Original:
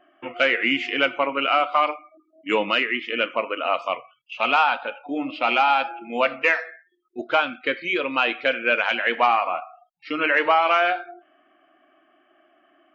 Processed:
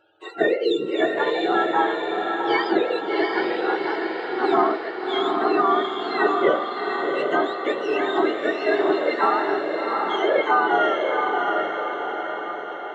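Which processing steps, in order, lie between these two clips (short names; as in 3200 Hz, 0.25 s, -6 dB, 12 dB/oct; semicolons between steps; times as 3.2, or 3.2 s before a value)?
spectrum mirrored in octaves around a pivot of 990 Hz; diffused feedback echo 0.741 s, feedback 57%, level -3 dB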